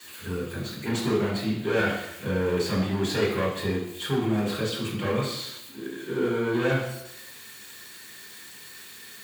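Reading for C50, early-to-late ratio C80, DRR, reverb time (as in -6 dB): 4.5 dB, 7.0 dB, -9.0 dB, 0.90 s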